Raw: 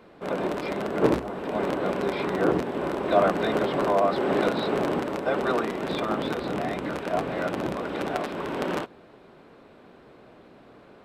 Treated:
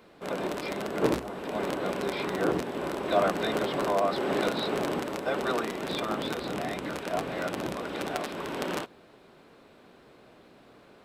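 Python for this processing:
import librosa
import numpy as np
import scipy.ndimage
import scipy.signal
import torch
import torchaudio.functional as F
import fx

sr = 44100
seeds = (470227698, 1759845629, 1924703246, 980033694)

y = fx.high_shelf(x, sr, hz=3300.0, db=10.5)
y = y * librosa.db_to_amplitude(-4.5)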